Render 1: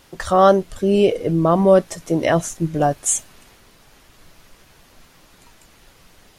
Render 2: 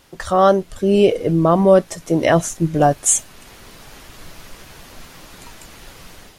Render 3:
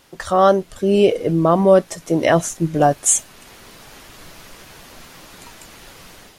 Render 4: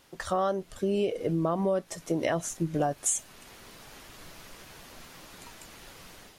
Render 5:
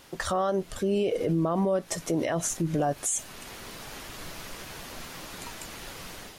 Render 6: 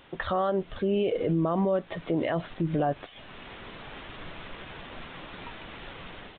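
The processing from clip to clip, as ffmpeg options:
-af "dynaudnorm=f=130:g=5:m=3.55,volume=0.891"
-af "lowshelf=f=100:g=-7"
-af "acompressor=threshold=0.141:ratio=6,volume=0.447"
-af "alimiter=level_in=1.26:limit=0.0631:level=0:latency=1:release=58,volume=0.794,volume=2.37"
-af "aresample=8000,aresample=44100"

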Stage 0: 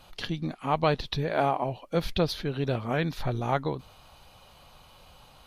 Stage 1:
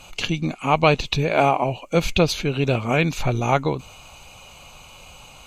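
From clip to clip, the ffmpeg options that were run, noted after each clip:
-af "superequalizer=11b=0.631:12b=2.51:15b=3.55,volume=2.37"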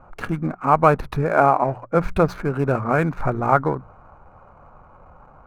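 -af "adynamicsmooth=sensitivity=6:basefreq=710,highshelf=f=2100:t=q:w=3:g=-13,bandreject=f=60:t=h:w=6,bandreject=f=120:t=h:w=6,bandreject=f=180:t=h:w=6"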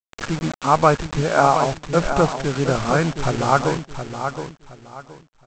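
-af "aresample=16000,acrusher=bits=4:mix=0:aa=0.000001,aresample=44100,aecho=1:1:719|1438|2157:0.376|0.0977|0.0254"

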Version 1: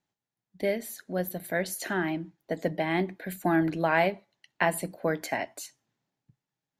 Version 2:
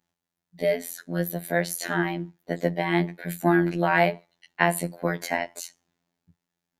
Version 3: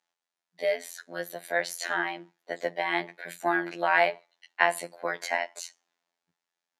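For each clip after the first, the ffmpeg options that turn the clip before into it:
-af "afftfilt=real='hypot(re,im)*cos(PI*b)':imag='0':win_size=2048:overlap=0.75,volume=2.24"
-af "highpass=610,lowpass=7800"

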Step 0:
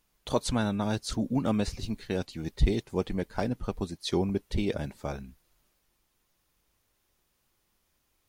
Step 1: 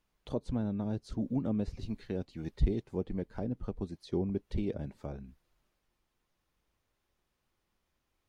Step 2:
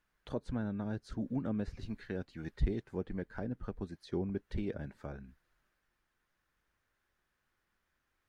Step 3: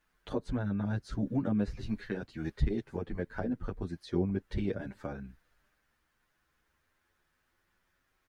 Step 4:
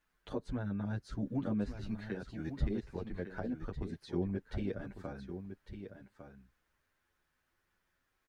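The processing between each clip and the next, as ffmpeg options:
-filter_complex "[0:a]lowpass=f=3000:p=1,acrossover=split=580[s0][s1];[s1]acompressor=threshold=0.00447:ratio=10[s2];[s0][s2]amix=inputs=2:normalize=0,volume=0.631"
-af "equalizer=f=1600:t=o:w=0.74:g=12,volume=0.668"
-filter_complex "[0:a]asplit=2[s0][s1];[s1]alimiter=level_in=1.41:limit=0.0631:level=0:latency=1:release=321,volume=0.708,volume=1.26[s2];[s0][s2]amix=inputs=2:normalize=0,asplit=2[s3][s4];[s4]adelay=8.8,afreqshift=0.26[s5];[s3][s5]amix=inputs=2:normalize=1,volume=1.12"
-af "aecho=1:1:1153:0.335,volume=0.596"

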